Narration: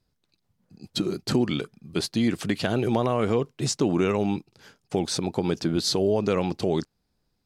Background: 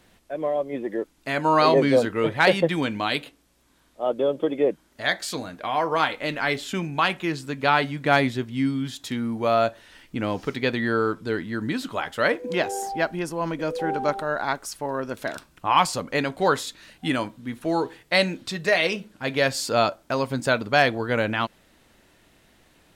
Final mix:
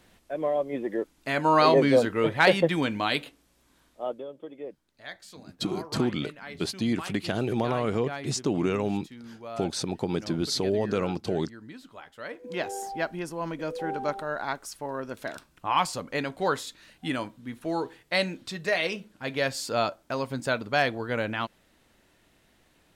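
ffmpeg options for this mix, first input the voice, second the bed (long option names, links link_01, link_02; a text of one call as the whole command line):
ffmpeg -i stem1.wav -i stem2.wav -filter_complex "[0:a]adelay=4650,volume=-3.5dB[link_01];[1:a]volume=10.5dB,afade=type=out:start_time=3.83:duration=0.42:silence=0.158489,afade=type=in:start_time=12.28:duration=0.41:silence=0.251189[link_02];[link_01][link_02]amix=inputs=2:normalize=0" out.wav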